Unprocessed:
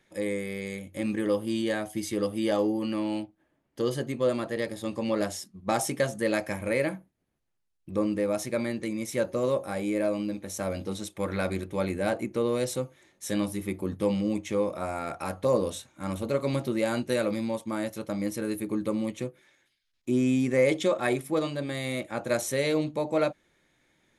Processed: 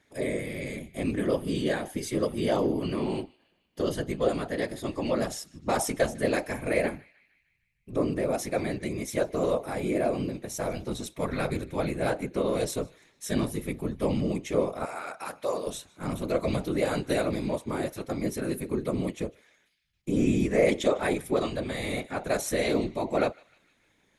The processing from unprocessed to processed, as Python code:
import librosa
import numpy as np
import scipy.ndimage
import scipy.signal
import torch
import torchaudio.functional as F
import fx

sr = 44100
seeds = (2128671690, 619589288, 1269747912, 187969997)

y = fx.whisperise(x, sr, seeds[0])
y = fx.highpass(y, sr, hz=910.0, slope=6, at=(14.85, 15.67))
y = fx.echo_banded(y, sr, ms=152, feedback_pct=61, hz=2800.0, wet_db=-21.5)